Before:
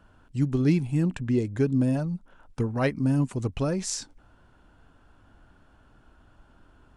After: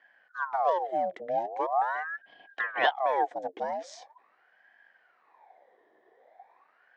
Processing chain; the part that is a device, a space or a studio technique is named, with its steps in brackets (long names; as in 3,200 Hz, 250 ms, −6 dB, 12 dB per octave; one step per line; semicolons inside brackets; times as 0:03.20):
0:02.13–0:03.29: parametric band 1,800 Hz +13 dB 2.1 octaves
voice changer toy (ring modulator whose carrier an LFO sweeps 1,000 Hz, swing 65%, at 0.42 Hz; loudspeaker in its box 460–4,900 Hz, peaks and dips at 500 Hz +3 dB, 740 Hz +10 dB, 1,300 Hz −9 dB, 1,800 Hz +7 dB, 2,700 Hz −9 dB, 4,500 Hz −7 dB)
level −4 dB